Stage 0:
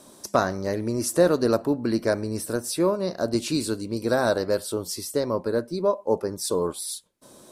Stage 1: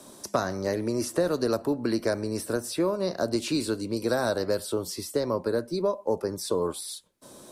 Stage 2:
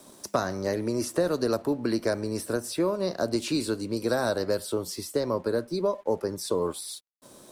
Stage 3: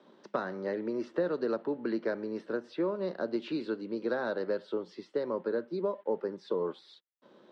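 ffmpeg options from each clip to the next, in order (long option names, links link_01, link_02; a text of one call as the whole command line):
ffmpeg -i in.wav -filter_complex "[0:a]acrossover=split=110|260|3900[link_01][link_02][link_03][link_04];[link_01]acompressor=threshold=-45dB:ratio=4[link_05];[link_02]acompressor=threshold=-39dB:ratio=4[link_06];[link_03]acompressor=threshold=-25dB:ratio=4[link_07];[link_04]acompressor=threshold=-39dB:ratio=4[link_08];[link_05][link_06][link_07][link_08]amix=inputs=4:normalize=0,volume=1.5dB" out.wav
ffmpeg -i in.wav -af "aeval=exprs='sgn(val(0))*max(abs(val(0))-0.00133,0)':channel_layout=same" out.wav
ffmpeg -i in.wav -af "highpass=frequency=190:width=0.5412,highpass=frequency=190:width=1.3066,equalizer=frequency=270:width_type=q:width=4:gain=-6,equalizer=frequency=680:width_type=q:width=4:gain=-7,equalizer=frequency=1100:width_type=q:width=4:gain=-4,equalizer=frequency=2400:width_type=q:width=4:gain=-7,lowpass=frequency=3100:width=0.5412,lowpass=frequency=3100:width=1.3066,volume=-3dB" out.wav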